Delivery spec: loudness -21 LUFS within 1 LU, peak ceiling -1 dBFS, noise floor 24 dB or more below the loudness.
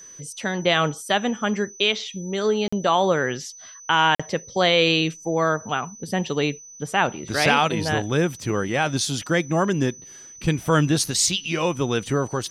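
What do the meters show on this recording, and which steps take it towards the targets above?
dropouts 2; longest dropout 45 ms; steady tone 6000 Hz; tone level -41 dBFS; loudness -22.0 LUFS; peak -4.5 dBFS; loudness target -21.0 LUFS
-> interpolate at 2.68/4.15, 45 ms; notch 6000 Hz, Q 30; gain +1 dB

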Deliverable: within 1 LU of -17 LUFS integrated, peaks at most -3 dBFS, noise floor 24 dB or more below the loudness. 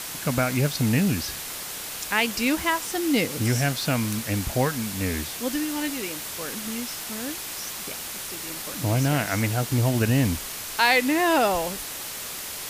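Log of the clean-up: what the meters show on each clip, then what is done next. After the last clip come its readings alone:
noise floor -35 dBFS; noise floor target -49 dBFS; loudness -25.0 LUFS; peak -6.0 dBFS; loudness target -17.0 LUFS
-> denoiser 14 dB, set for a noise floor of -35 dBFS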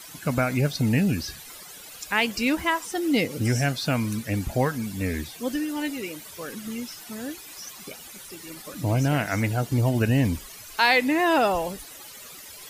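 noise floor -44 dBFS; noise floor target -49 dBFS
-> denoiser 6 dB, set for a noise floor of -44 dBFS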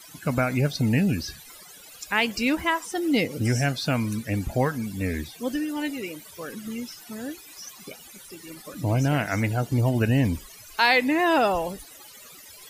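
noise floor -47 dBFS; noise floor target -49 dBFS
-> denoiser 6 dB, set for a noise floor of -47 dBFS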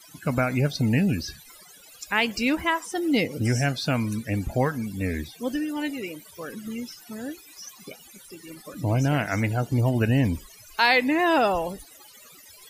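noise floor -50 dBFS; loudness -25.0 LUFS; peak -6.0 dBFS; loudness target -17.0 LUFS
-> gain +8 dB; limiter -3 dBFS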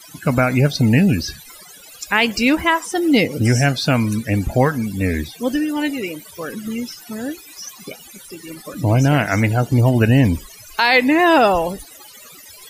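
loudness -17.5 LUFS; peak -3.0 dBFS; noise floor -42 dBFS

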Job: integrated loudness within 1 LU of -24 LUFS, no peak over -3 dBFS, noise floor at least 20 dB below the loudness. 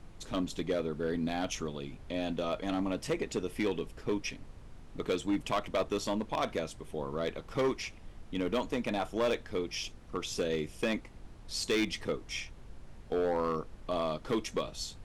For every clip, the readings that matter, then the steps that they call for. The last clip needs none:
clipped 1.0%; flat tops at -24.0 dBFS; noise floor -51 dBFS; noise floor target -55 dBFS; loudness -34.5 LUFS; peak -24.0 dBFS; loudness target -24.0 LUFS
-> clip repair -24 dBFS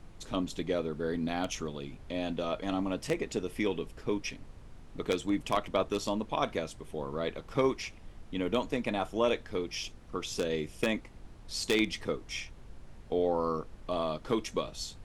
clipped 0.0%; noise floor -51 dBFS; noise floor target -54 dBFS
-> noise print and reduce 6 dB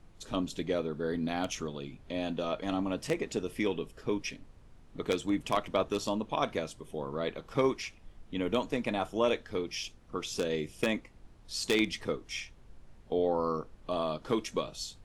noise floor -56 dBFS; loudness -33.5 LUFS; peak -15.0 dBFS; loudness target -24.0 LUFS
-> gain +9.5 dB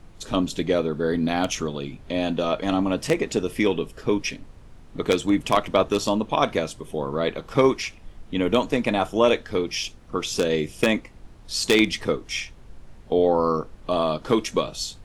loudness -24.0 LUFS; peak -5.5 dBFS; noise floor -46 dBFS

